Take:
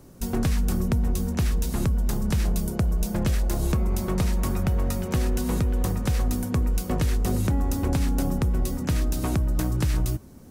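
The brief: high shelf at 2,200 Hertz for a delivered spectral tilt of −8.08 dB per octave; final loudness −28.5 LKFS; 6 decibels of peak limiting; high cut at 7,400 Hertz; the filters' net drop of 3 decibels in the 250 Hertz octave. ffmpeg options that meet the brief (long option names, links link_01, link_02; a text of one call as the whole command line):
ffmpeg -i in.wav -af "lowpass=7400,equalizer=frequency=250:width_type=o:gain=-4,highshelf=frequency=2200:gain=-8,volume=2dB,alimiter=limit=-20dB:level=0:latency=1" out.wav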